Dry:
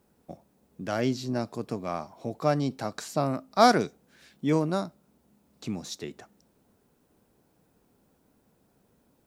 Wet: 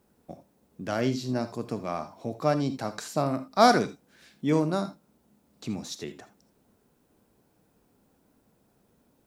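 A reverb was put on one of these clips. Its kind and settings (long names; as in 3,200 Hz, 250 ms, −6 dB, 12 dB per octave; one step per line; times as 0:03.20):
reverb whose tail is shaped and stops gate 100 ms rising, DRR 11 dB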